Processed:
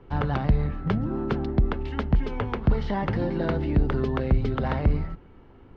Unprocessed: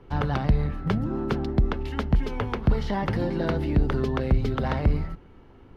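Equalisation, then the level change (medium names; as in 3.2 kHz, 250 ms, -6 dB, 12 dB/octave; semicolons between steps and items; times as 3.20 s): Bessel low-pass 3.6 kHz, order 2; 0.0 dB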